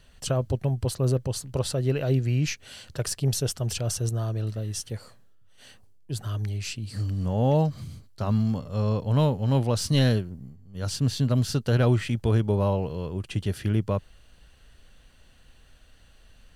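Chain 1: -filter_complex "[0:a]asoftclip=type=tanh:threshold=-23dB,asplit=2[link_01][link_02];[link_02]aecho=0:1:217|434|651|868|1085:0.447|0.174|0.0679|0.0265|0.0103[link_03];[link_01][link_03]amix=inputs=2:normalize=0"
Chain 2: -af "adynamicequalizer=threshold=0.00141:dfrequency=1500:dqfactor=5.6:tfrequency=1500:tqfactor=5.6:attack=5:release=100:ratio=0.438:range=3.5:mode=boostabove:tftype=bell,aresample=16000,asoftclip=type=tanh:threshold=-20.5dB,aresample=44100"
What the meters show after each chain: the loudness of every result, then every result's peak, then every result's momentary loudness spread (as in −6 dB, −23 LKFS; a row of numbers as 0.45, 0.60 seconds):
−29.5, −29.5 LKFS; −18.5, −20.0 dBFS; 9, 9 LU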